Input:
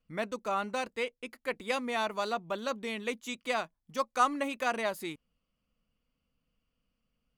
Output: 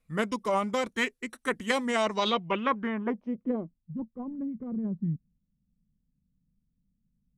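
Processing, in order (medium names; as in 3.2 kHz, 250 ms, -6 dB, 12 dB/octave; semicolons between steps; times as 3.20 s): formant shift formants -3 st; low-pass sweep 11 kHz -> 180 Hz, 1.82–3.85 s; dynamic bell 130 Hz, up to +5 dB, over -50 dBFS, Q 0.86; trim +4.5 dB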